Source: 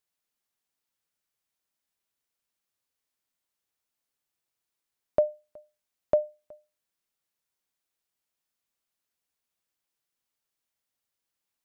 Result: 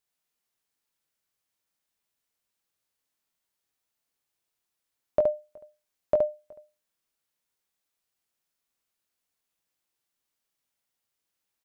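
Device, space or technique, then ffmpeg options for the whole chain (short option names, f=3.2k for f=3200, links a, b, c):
slapback doubling: -filter_complex "[0:a]asplit=3[a][b][c];[b]adelay=21,volume=-6.5dB[d];[c]adelay=71,volume=-4.5dB[e];[a][d][e]amix=inputs=3:normalize=0"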